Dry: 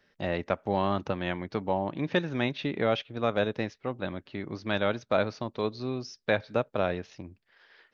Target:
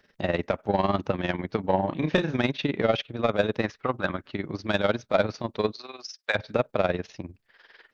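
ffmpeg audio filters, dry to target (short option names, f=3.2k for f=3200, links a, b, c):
-filter_complex "[0:a]asettb=1/sr,asplit=3[a][b][c];[a]atrim=end=3.624[d];[b]atrim=start=3.62:end=4.31,asetpts=PTS-STARTPTS,afade=t=in:d=0.004:c=qsin,afade=t=out:st=0.686:d=0.004:c=qsin,equalizer=f=1.3k:w=1.2:g=9.5[e];[c]atrim=start=4.306[f];[d][e]acrossfade=d=0.004:c1=hsin:c2=qsin[g];[g][f]acrossfade=d=0.004:c1=qsin:c2=hsin,asplit=3[h][i][j];[h]afade=t=out:st=5.71:d=0.02[k];[i]highpass=920,afade=t=in:st=5.71:d=0.02,afade=t=out:st=6.34:d=0.02[l];[j]afade=t=in:st=6.34:d=0.02[m];[k][l][m]amix=inputs=3:normalize=0,asoftclip=type=tanh:threshold=-15.5dB,tremolo=f=20:d=0.75,asettb=1/sr,asplit=3[n][o][p];[n]atrim=end=1.664[q];[o]atrim=start=1.66:end=2.37,asetpts=PTS-STARTPTS,afade=t=in:d=0.004:c=qsin,afade=t=out:st=0.706:d=0.004:c=qsin,asplit=2[r][s];[s]adelay=32,volume=-7dB[t];[r][t]amix=inputs=2:normalize=0,atrim=end_sample=31311[u];[p]atrim=start=2.366[v];[q][u]acrossfade=d=0.004:c1=hsin:c2=qsin[w];[w][v]acrossfade=d=0.004:c1=qsin:c2=hsin,volume=7.5dB"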